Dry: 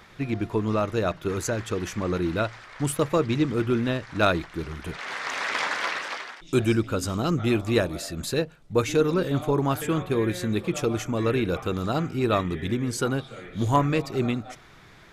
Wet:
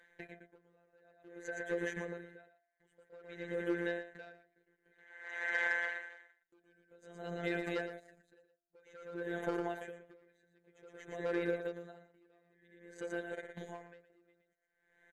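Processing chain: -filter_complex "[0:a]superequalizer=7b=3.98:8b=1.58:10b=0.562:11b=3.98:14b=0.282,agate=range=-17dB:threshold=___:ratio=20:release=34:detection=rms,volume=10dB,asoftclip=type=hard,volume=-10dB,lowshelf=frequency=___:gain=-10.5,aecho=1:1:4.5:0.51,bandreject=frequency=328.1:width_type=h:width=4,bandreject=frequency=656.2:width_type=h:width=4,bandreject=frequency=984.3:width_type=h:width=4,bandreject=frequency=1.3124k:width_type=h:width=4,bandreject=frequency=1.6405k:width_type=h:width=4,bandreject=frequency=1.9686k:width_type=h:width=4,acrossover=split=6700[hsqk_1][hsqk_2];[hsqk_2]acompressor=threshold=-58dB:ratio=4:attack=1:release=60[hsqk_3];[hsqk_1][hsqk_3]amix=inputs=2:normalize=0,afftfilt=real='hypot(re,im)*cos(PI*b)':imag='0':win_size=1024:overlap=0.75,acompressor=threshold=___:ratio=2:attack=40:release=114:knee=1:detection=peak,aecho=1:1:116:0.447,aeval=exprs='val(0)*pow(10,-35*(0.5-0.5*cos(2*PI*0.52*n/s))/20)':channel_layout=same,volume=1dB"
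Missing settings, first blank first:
-32dB, 250, -49dB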